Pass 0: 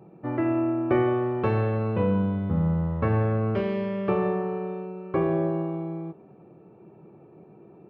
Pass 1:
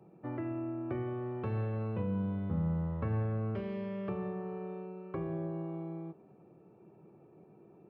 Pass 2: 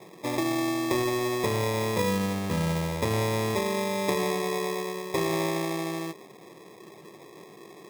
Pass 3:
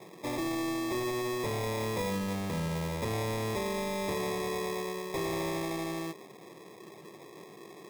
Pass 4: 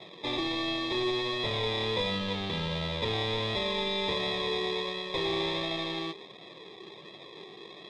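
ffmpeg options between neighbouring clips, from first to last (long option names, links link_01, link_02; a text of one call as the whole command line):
ffmpeg -i in.wav -filter_complex "[0:a]acrossover=split=230[link_01][link_02];[link_02]acompressor=threshold=-31dB:ratio=5[link_03];[link_01][link_03]amix=inputs=2:normalize=0,volume=-8dB" out.wav
ffmpeg -i in.wav -af "equalizer=frequency=540:width=0.57:gain=14.5,acrusher=samples=30:mix=1:aa=0.000001" out.wav
ffmpeg -i in.wav -af "asoftclip=type=tanh:threshold=-27.5dB,volume=-1.5dB" out.wav
ffmpeg -i in.wav -af "lowpass=frequency=3600:width_type=q:width=6.3,flanger=delay=1.5:depth=1.1:regen=58:speed=1.4:shape=sinusoidal,volume=4.5dB" out.wav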